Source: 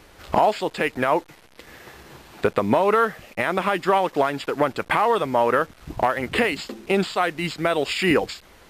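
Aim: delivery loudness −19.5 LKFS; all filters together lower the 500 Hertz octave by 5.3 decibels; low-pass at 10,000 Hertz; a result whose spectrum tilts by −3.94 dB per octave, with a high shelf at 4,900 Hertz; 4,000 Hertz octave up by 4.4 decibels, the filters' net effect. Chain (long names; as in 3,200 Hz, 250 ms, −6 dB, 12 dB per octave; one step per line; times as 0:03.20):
low-pass filter 10,000 Hz
parametric band 500 Hz −7 dB
parametric band 4,000 Hz +4 dB
high-shelf EQ 4,900 Hz +5 dB
level +4.5 dB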